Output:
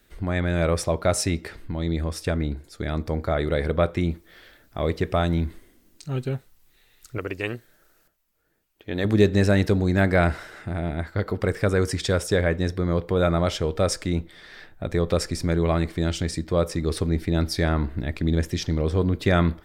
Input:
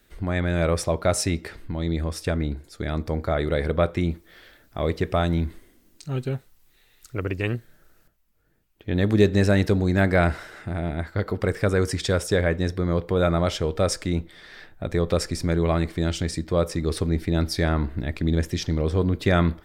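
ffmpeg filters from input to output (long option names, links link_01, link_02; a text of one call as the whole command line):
ffmpeg -i in.wav -filter_complex "[0:a]asettb=1/sr,asplit=3[link_01][link_02][link_03];[link_01]atrim=end=7.184[link_04];[link_02]atrim=start=7.18:end=9.05,asetpts=PTS-STARTPTS,afade=type=in:duration=0.004:curve=qsin,afade=type=out:start_time=1.866:duration=0.004:curve=qsin,bass=frequency=250:gain=-9,treble=frequency=4000:gain=2[link_05];[link_03]atrim=start=9.046[link_06];[link_04][link_05]acrossfade=duration=0.004:curve1=hsin:curve2=qsin[link_07];[link_07][link_06]acrossfade=duration=0.004:curve1=qsin:curve2=hsin" out.wav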